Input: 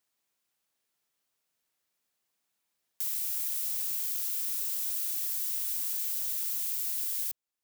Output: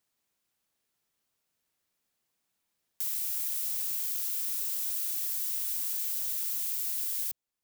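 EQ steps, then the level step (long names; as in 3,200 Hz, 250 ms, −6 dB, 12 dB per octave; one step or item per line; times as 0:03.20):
low-shelf EQ 290 Hz +6.5 dB
0.0 dB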